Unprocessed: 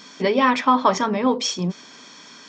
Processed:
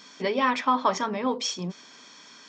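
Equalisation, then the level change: bass shelf 400 Hz -4.5 dB; -5.0 dB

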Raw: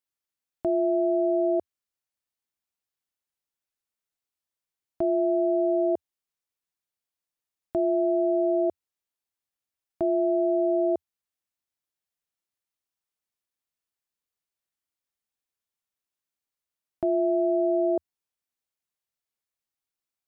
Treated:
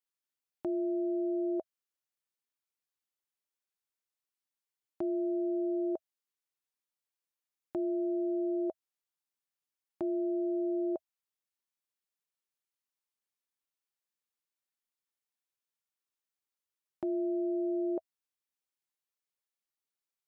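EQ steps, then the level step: high-pass 240 Hz 6 dB/octave; Butterworth band-stop 680 Hz, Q 7.5; -4.0 dB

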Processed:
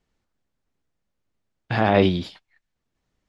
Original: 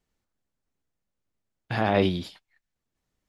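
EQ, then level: distance through air 58 m; +5.0 dB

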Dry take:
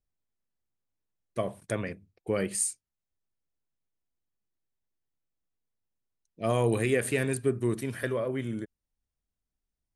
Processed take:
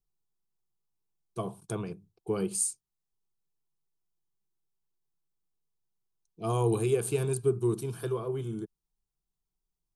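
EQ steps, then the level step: bass shelf 470 Hz +3 dB; static phaser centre 380 Hz, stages 8; 0.0 dB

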